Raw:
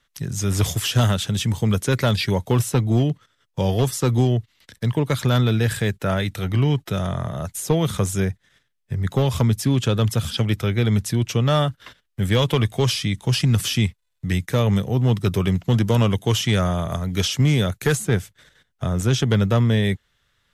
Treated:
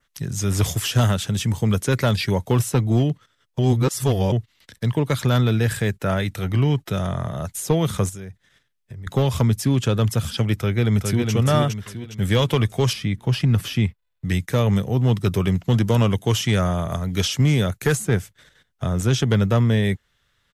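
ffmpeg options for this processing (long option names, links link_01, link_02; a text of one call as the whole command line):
ffmpeg -i in.wav -filter_complex "[0:a]asettb=1/sr,asplit=3[link_01][link_02][link_03];[link_01]atrim=end=8.094[link_04];[link_02]atrim=start=8.09:end=9.07,asetpts=PTS-STARTPTS,afade=type=in:duration=0.004:curve=qsin,afade=type=out:start_time=0.976:duration=0.004:curve=qsin,acompressor=threshold=-34dB:ratio=5:attack=3.2:release=140:knee=1:detection=peak[link_05];[link_03]atrim=start=9.066[link_06];[link_04][link_05]acrossfade=duration=0.004:curve1=hsin:curve2=qsin[link_07];[link_07][link_06]acrossfade=duration=0.004:curve1=qsin:curve2=hsin,asplit=2[link_08][link_09];[link_09]afade=type=in:start_time=10.54:duration=0.01,afade=type=out:start_time=11.32:duration=0.01,aecho=0:1:410|820|1230|1640|2050:0.630957|0.252383|0.100953|0.0403813|0.0161525[link_10];[link_08][link_10]amix=inputs=2:normalize=0,asettb=1/sr,asplit=3[link_11][link_12][link_13];[link_11]atrim=end=12.934[link_14];[link_12]atrim=start=12.93:end=14.25,asetpts=PTS-STARTPTS,afade=type=in:duration=0.004:curve=qsin,afade=type=out:start_time=1.316:duration=0.004:curve=qsin,equalizer=frequency=7800:width=0.58:gain=-11.5[link_15];[link_13]atrim=start=14.246[link_16];[link_14][link_15]acrossfade=duration=0.004:curve1=hsin:curve2=qsin[link_17];[link_17][link_16]acrossfade=duration=0.004:curve1=qsin:curve2=hsin,asplit=3[link_18][link_19][link_20];[link_18]atrim=end=3.592[link_21];[link_19]atrim=start=3.588:end=4.322,asetpts=PTS-STARTPTS,areverse[link_22];[link_20]atrim=start=4.318[link_23];[link_21][link_22]acrossfade=duration=0.004:curve1=hsin:curve2=hsin[link_24];[link_24][link_23]acrossfade=duration=0.004:curve1=hsin:curve2=hsin,adynamicequalizer=threshold=0.00708:dfrequency=3600:dqfactor=2.2:tfrequency=3600:tqfactor=2.2:attack=5:release=100:ratio=0.375:range=2:mode=cutabove:tftype=bell" out.wav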